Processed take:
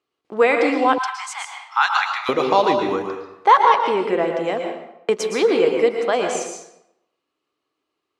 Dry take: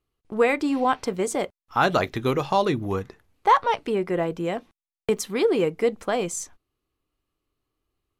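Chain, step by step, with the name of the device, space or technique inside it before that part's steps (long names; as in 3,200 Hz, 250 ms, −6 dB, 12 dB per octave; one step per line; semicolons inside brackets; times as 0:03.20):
supermarket ceiling speaker (band-pass filter 330–6,000 Hz; convolution reverb RT60 0.80 s, pre-delay 107 ms, DRR 3 dB)
0:00.98–0:02.29: Butterworth high-pass 840 Hz 72 dB per octave
level +5 dB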